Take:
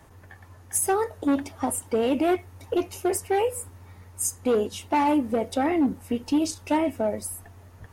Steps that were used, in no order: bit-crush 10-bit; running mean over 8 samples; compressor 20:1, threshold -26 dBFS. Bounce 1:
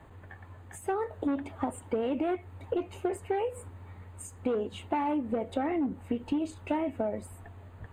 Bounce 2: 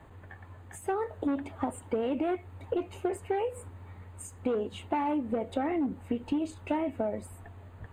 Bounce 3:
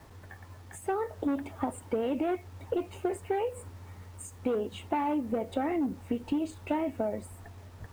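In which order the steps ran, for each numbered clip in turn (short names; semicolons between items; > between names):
bit-crush > compressor > running mean; compressor > bit-crush > running mean; compressor > running mean > bit-crush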